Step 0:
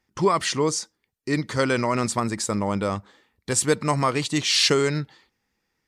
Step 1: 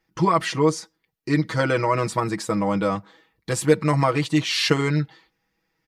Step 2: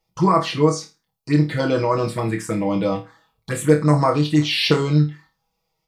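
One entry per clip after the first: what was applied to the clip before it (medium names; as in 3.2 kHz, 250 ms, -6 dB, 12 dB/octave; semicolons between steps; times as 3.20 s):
peaking EQ 8 kHz -7.5 dB 0.98 oct; comb 6.2 ms, depth 88%; dynamic bell 5.1 kHz, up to -5 dB, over -34 dBFS, Q 0.71
touch-sensitive phaser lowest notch 280 Hz, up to 3.2 kHz, full sweep at -15 dBFS; on a send: flutter echo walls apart 4.6 m, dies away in 0.27 s; on the sum: trim +2.5 dB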